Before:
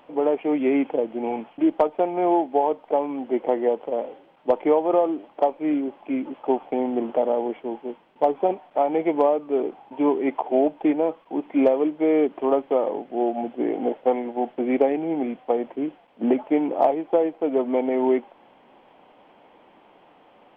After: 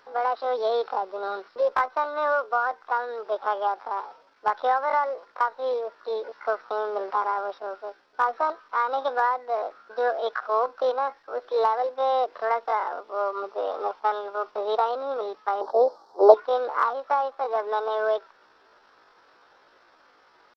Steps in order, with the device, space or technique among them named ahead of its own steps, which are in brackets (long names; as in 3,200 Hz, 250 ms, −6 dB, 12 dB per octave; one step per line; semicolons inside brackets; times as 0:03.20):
chipmunk voice (pitch shifter +9 semitones)
0:15.61–0:16.34: drawn EQ curve 110 Hz 0 dB, 850 Hz +15 dB, 2,600 Hz −21 dB, 4,300 Hz +7 dB
level −4 dB